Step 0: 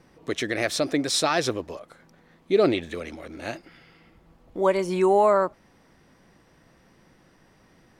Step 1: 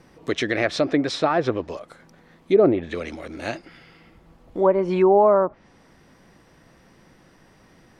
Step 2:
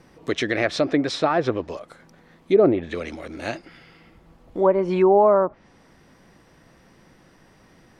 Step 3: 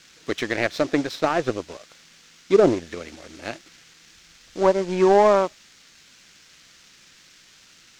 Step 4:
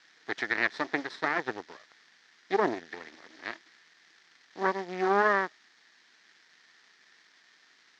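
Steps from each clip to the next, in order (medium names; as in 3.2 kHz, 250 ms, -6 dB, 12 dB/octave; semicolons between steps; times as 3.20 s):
low-pass that closes with the level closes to 1 kHz, closed at -17.5 dBFS; trim +4 dB
no audible change
band noise 1.3–6.8 kHz -42 dBFS; power-law waveshaper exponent 1.4; trim +2 dB
half-wave rectifier; cabinet simulation 300–5400 Hz, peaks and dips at 560 Hz -8 dB, 1.8 kHz +10 dB, 2.7 kHz -5 dB; trim -4.5 dB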